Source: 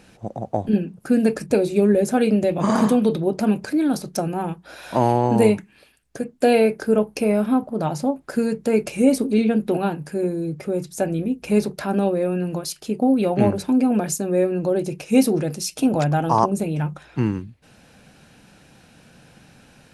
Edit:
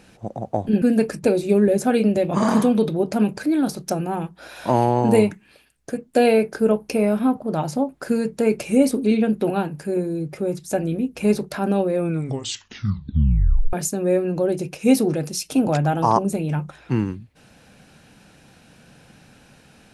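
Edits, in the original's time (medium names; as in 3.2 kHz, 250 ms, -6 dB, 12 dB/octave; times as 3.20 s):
0.82–1.09 s: delete
12.23 s: tape stop 1.77 s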